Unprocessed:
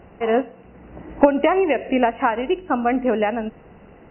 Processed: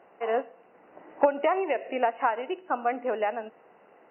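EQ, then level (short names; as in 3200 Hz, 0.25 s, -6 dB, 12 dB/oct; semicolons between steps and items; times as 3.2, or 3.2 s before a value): HPF 570 Hz 12 dB/oct; high shelf 2400 Hz -11.5 dB; -3.0 dB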